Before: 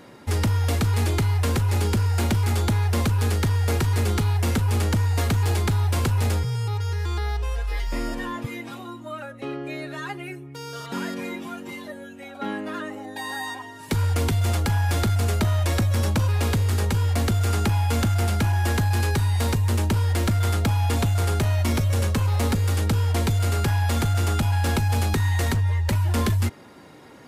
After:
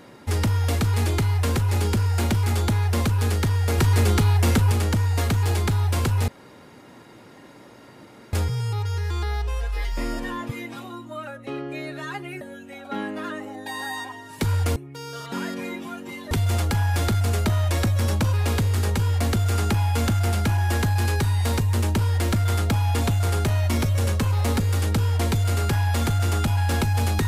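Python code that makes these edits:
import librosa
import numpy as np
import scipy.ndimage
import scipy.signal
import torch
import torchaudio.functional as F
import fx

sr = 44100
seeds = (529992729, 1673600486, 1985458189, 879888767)

y = fx.edit(x, sr, fx.clip_gain(start_s=3.78, length_s=0.94, db=3.5),
    fx.insert_room_tone(at_s=6.28, length_s=2.05),
    fx.move(start_s=10.36, length_s=1.55, to_s=14.26), tone=tone)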